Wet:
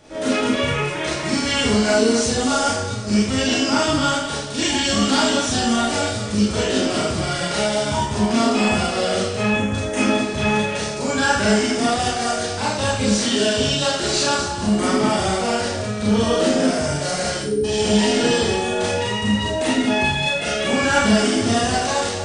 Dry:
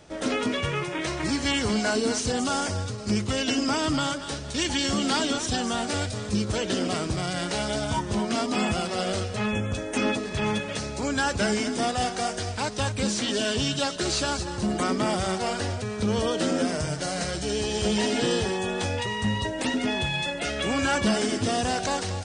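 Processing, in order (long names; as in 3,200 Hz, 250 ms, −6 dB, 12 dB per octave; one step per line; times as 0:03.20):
time-frequency box erased 0:17.40–0:17.64, 540–8,700 Hz
four-comb reverb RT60 0.57 s, combs from 27 ms, DRR −6 dB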